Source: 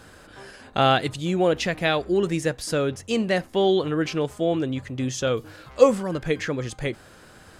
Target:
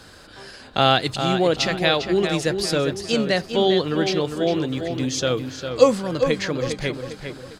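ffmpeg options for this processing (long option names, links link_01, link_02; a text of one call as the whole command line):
ffmpeg -i in.wav -filter_complex "[0:a]equalizer=frequency=4400:width_type=o:width=0.75:gain=9.5,acrossover=split=110[link_01][link_02];[link_01]acrusher=samples=27:mix=1:aa=0.000001:lfo=1:lforange=16.2:lforate=2.1[link_03];[link_03][link_02]amix=inputs=2:normalize=0,asplit=2[link_04][link_05];[link_05]adelay=403,lowpass=frequency=3700:poles=1,volume=-7dB,asplit=2[link_06][link_07];[link_07]adelay=403,lowpass=frequency=3700:poles=1,volume=0.43,asplit=2[link_08][link_09];[link_09]adelay=403,lowpass=frequency=3700:poles=1,volume=0.43,asplit=2[link_10][link_11];[link_11]adelay=403,lowpass=frequency=3700:poles=1,volume=0.43,asplit=2[link_12][link_13];[link_13]adelay=403,lowpass=frequency=3700:poles=1,volume=0.43[link_14];[link_04][link_06][link_08][link_10][link_12][link_14]amix=inputs=6:normalize=0,volume=1dB" out.wav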